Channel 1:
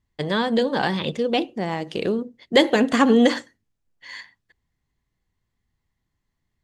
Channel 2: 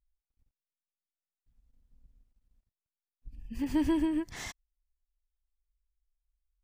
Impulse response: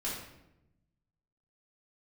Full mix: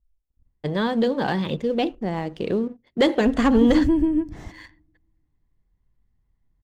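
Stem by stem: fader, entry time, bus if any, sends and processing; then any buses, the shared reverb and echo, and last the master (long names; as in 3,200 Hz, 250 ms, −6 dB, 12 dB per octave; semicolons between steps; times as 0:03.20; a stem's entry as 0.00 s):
+1.0 dB, 0.45 s, no send, spectral tilt −1.5 dB per octave; leveller curve on the samples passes 1; automatic ducking −7 dB, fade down 0.70 s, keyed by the second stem
+1.5 dB, 0.00 s, send −20 dB, tilt shelving filter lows +9 dB, about 790 Hz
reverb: on, RT60 0.90 s, pre-delay 3 ms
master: one half of a high-frequency compander decoder only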